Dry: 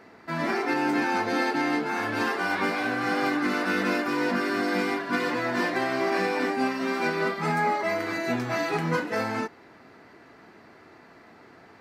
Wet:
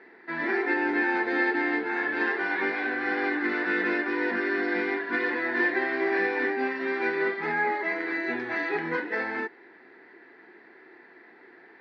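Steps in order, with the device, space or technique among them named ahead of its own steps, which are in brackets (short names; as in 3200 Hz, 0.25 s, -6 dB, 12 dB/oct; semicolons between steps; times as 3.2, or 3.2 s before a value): phone earpiece (speaker cabinet 350–3600 Hz, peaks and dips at 360 Hz +8 dB, 620 Hz -9 dB, 1200 Hz -9 dB, 1800 Hz +9 dB, 2900 Hz -6 dB); gain -1 dB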